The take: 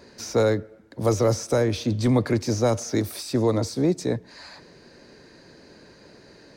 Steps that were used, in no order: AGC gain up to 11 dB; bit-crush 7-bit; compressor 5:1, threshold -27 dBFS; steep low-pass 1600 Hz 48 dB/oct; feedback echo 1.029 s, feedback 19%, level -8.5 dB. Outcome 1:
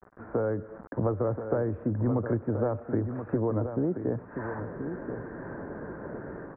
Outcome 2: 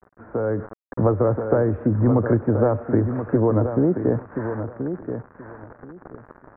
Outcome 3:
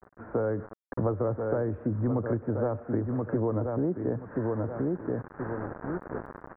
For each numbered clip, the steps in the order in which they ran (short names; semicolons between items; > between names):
AGC > bit-crush > steep low-pass > compressor > feedback echo; bit-crush > steep low-pass > compressor > feedback echo > AGC; feedback echo > bit-crush > AGC > compressor > steep low-pass